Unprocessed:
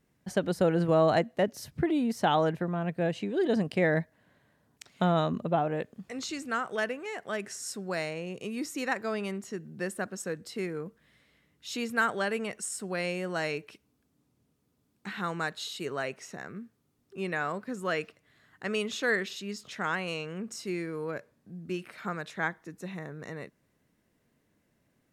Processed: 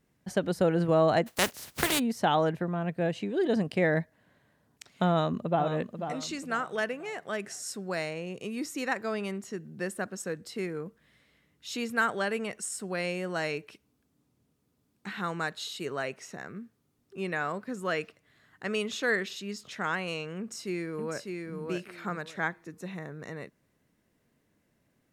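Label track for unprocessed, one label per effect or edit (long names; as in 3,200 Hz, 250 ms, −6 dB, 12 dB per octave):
1.260000	1.980000	compressing power law on the bin magnitudes exponent 0.31
5.100000	5.660000	delay throw 490 ms, feedback 35%, level −8.5 dB
20.380000	21.570000	delay throw 600 ms, feedback 20%, level −4 dB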